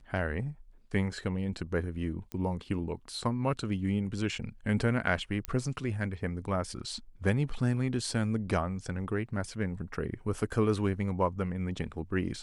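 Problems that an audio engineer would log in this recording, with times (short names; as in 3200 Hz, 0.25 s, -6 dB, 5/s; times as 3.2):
2.32 pop -23 dBFS
5.45 pop -16 dBFS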